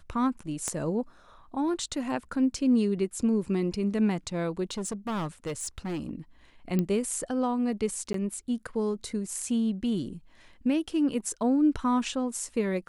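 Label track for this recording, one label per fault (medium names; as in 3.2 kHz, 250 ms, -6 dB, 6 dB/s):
0.680000	0.680000	pop -17 dBFS
4.640000	6.110000	clipped -28.5 dBFS
6.790000	6.790000	pop -15 dBFS
8.130000	8.140000	dropout 13 ms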